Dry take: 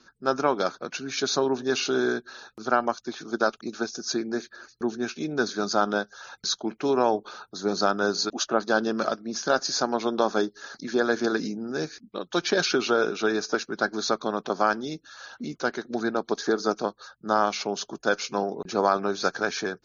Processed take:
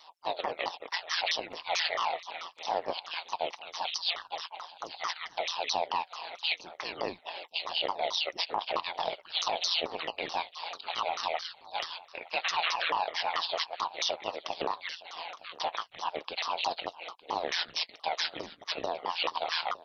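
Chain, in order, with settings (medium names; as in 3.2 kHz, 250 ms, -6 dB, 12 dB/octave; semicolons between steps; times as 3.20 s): sawtooth pitch modulation -8 st, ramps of 219 ms; inverse Chebyshev high-pass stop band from 410 Hz, stop band 50 dB; peak limiter -26 dBFS, peak gain reduction 11.5 dB; AM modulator 170 Hz, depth 60%; delay 913 ms -19.5 dB; frequency shift -370 Hz; vibrato with a chosen wave saw up 3.9 Hz, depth 100 cents; trim +9 dB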